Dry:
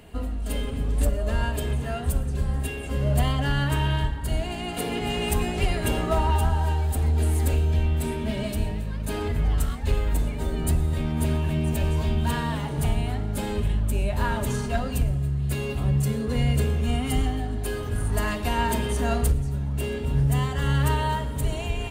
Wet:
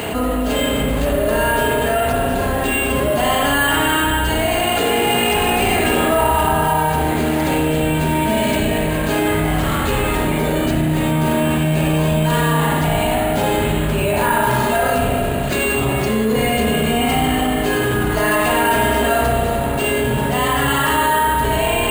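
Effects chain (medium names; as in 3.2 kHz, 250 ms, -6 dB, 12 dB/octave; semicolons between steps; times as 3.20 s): high-pass 330 Hz 6 dB/octave; spring tank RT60 1.6 s, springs 32/55 ms, chirp 50 ms, DRR -5 dB; careless resampling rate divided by 4×, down filtered, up hold; level flattener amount 70%; trim +4 dB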